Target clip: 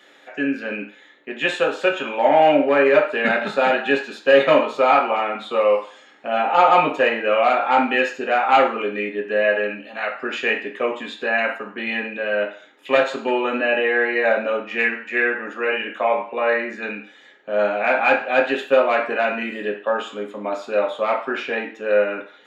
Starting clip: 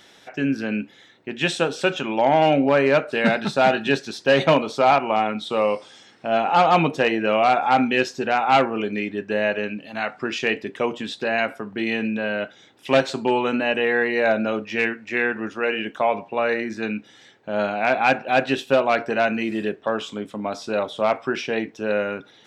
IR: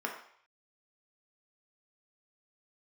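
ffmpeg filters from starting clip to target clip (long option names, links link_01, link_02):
-filter_complex "[0:a]highpass=140[link_01];[1:a]atrim=start_sample=2205,asetrate=57330,aresample=44100[link_02];[link_01][link_02]afir=irnorm=-1:irlink=0,volume=-1dB"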